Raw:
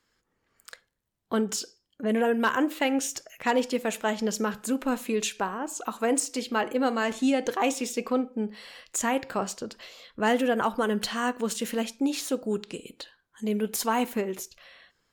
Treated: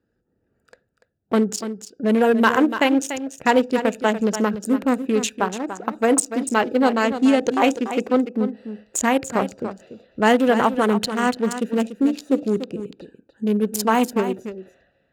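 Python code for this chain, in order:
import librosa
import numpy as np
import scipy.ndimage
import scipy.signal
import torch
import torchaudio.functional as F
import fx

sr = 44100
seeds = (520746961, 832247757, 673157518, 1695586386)

p1 = fx.wiener(x, sr, points=41)
p2 = scipy.signal.sosfilt(scipy.signal.butter(2, 54.0, 'highpass', fs=sr, output='sos'), p1)
p3 = p2 + fx.echo_single(p2, sr, ms=290, db=-10.5, dry=0)
y = F.gain(torch.from_numpy(p3), 8.5).numpy()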